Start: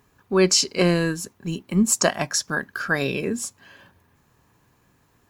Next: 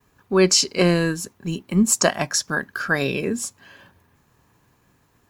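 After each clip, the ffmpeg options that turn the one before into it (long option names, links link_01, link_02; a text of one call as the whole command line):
ffmpeg -i in.wav -af "agate=range=-33dB:threshold=-60dB:ratio=3:detection=peak,volume=1.5dB" out.wav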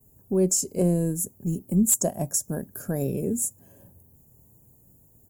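ffmpeg -i in.wav -filter_complex "[0:a]firequalizer=gain_entry='entry(110,0);entry(320,-6);entry(620,-6);entry(1200,-28);entry(4200,-30);entry(7100,-1);entry(13000,9)':delay=0.05:min_phase=1,asplit=2[link_01][link_02];[link_02]acompressor=threshold=-30dB:ratio=10,volume=3dB[link_03];[link_01][link_03]amix=inputs=2:normalize=0,asoftclip=type=hard:threshold=-9.5dB,volume=-3dB" out.wav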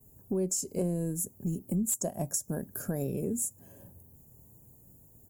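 ffmpeg -i in.wav -af "acompressor=threshold=-30dB:ratio=3" out.wav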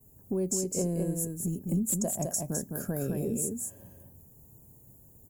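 ffmpeg -i in.wav -af "aecho=1:1:209:0.631" out.wav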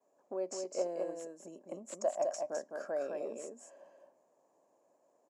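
ffmpeg -i in.wav -af "aeval=exprs='0.141*(cos(1*acos(clip(val(0)/0.141,-1,1)))-cos(1*PI/2))+0.00794*(cos(2*acos(clip(val(0)/0.141,-1,1)))-cos(2*PI/2))+0.00794*(cos(3*acos(clip(val(0)/0.141,-1,1)))-cos(3*PI/2))+0.000891*(cos(4*acos(clip(val(0)/0.141,-1,1)))-cos(4*PI/2))':channel_layout=same,highpass=frequency=400:width=0.5412,highpass=frequency=400:width=1.3066,equalizer=frequency=420:width_type=q:width=4:gain=-8,equalizer=frequency=600:width_type=q:width=4:gain=9,equalizer=frequency=1100:width_type=q:width=4:gain=6,equalizer=frequency=3500:width_type=q:width=4:gain=-7,lowpass=frequency=5000:width=0.5412,lowpass=frequency=5000:width=1.3066" out.wav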